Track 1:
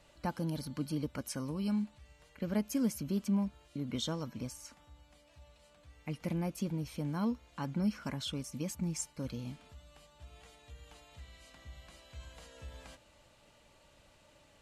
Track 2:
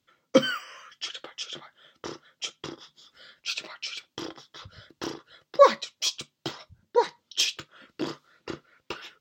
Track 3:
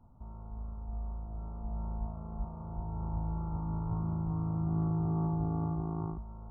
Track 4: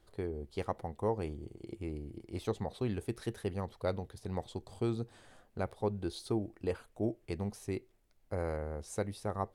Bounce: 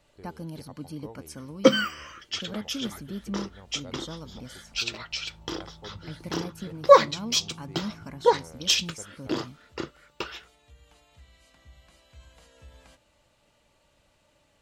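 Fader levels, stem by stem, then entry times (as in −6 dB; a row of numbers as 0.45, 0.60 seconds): −2.5, +2.5, −15.5, −12.5 decibels; 0.00, 1.30, 2.35, 0.00 seconds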